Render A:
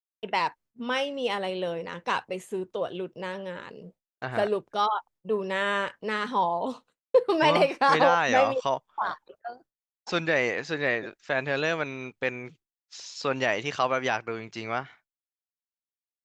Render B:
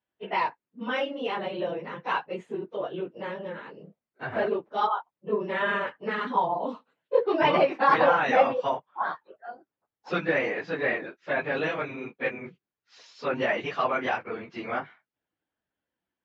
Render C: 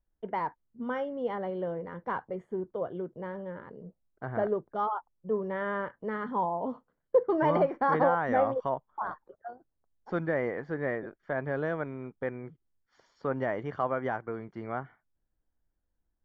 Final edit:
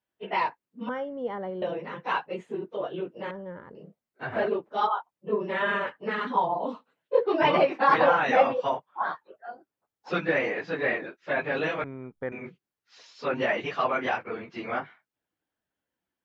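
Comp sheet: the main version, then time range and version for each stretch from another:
B
0.89–1.62 from C
3.31–3.75 from C
11.84–12.32 from C
not used: A

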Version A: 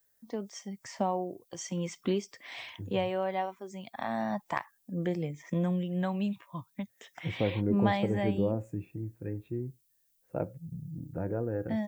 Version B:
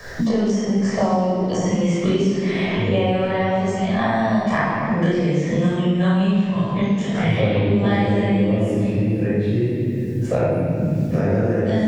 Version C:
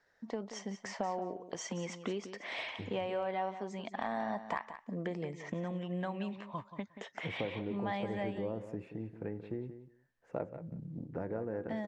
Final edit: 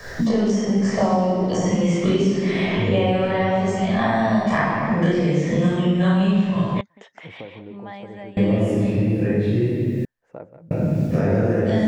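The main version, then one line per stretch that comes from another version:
B
6.81–8.37 from C
10.05–10.71 from C
not used: A

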